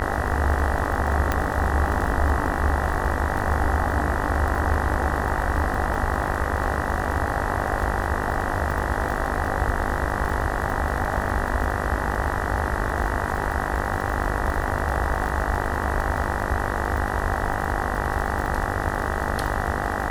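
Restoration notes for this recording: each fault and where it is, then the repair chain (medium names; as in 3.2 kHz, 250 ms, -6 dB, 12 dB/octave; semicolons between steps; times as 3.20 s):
buzz 50 Hz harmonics 39 -28 dBFS
crackle 38 per s -27 dBFS
1.32 s: pop -8 dBFS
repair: de-click; de-hum 50 Hz, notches 39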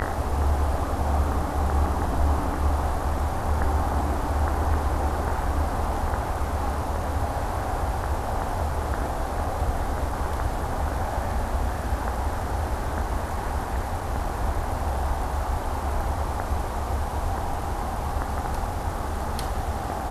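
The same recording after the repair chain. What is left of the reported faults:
1.32 s: pop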